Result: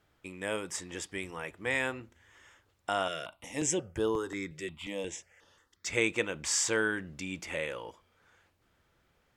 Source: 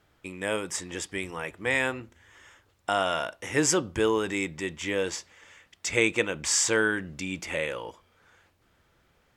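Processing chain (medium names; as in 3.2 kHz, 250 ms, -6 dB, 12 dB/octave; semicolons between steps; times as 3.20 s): 3.08–5.86 s: stepped phaser 5.6 Hz 240–7500 Hz; trim -5 dB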